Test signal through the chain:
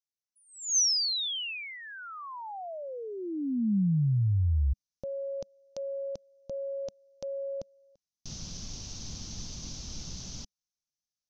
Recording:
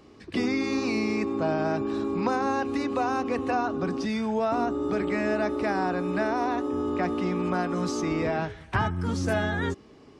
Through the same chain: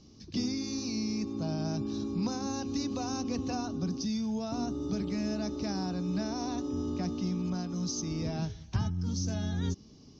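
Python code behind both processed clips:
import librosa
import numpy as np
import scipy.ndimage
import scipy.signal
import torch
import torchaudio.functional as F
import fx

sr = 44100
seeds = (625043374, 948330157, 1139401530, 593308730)

y = fx.curve_eq(x, sr, hz=(200.0, 400.0, 760.0, 1900.0, 6200.0, 8900.0), db=(0, -13, -14, -19, 11, -28))
y = fx.rider(y, sr, range_db=3, speed_s=0.5)
y = fx.high_shelf(y, sr, hz=7900.0, db=-7.5)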